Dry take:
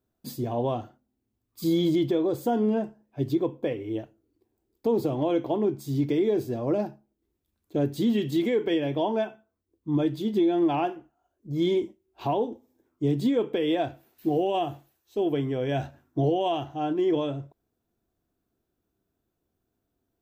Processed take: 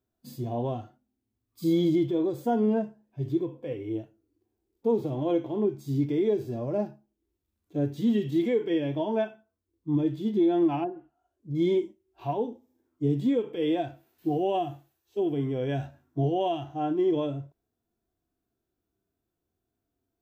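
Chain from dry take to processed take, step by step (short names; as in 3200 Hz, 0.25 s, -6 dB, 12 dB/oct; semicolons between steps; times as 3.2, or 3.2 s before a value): 10.83–11.55 treble ducked by the level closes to 660 Hz, closed at -25.5 dBFS; harmonic-percussive split percussive -16 dB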